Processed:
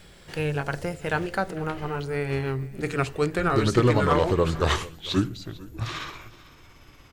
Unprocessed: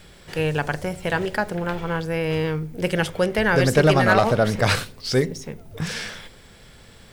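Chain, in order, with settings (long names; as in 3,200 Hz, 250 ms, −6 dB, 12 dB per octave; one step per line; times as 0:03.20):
pitch glide at a constant tempo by −7.5 semitones starting unshifted
single-tap delay 448 ms −20.5 dB
level −2.5 dB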